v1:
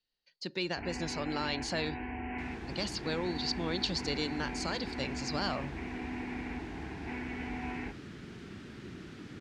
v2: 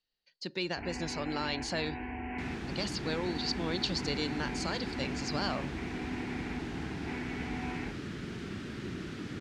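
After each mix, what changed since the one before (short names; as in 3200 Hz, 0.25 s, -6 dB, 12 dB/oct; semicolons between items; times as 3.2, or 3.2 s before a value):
second sound +6.5 dB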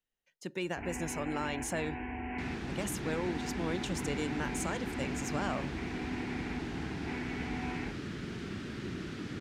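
speech: remove synth low-pass 4500 Hz, resonance Q 15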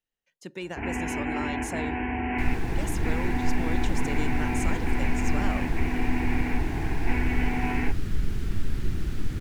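first sound +10.0 dB; second sound: remove BPF 200–5600 Hz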